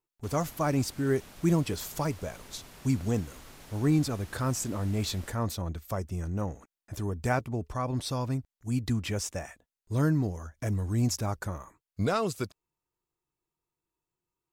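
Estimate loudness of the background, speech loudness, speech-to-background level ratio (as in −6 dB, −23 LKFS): −50.0 LKFS, −31.0 LKFS, 19.0 dB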